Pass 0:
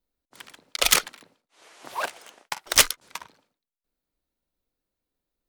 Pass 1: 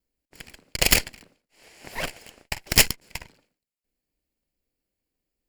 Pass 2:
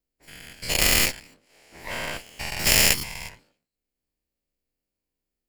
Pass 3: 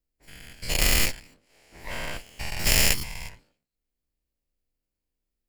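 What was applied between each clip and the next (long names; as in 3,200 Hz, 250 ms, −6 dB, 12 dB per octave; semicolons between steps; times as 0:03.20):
lower of the sound and its delayed copy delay 0.4 ms; level +2 dB
every bin's largest magnitude spread in time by 240 ms; level −8.5 dB
low-shelf EQ 91 Hz +10.5 dB; level −3.5 dB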